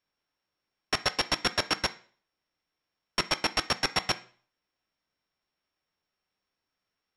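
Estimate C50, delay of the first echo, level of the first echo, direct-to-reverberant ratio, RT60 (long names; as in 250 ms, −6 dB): 17.5 dB, no echo audible, no echo audible, 10.5 dB, 0.45 s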